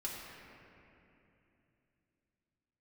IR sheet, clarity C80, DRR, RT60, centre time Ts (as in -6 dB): 1.0 dB, -6.0 dB, 2.9 s, 135 ms